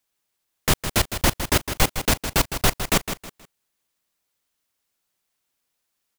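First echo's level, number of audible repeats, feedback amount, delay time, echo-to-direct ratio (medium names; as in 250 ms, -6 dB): -9.5 dB, 3, 30%, 159 ms, -9.0 dB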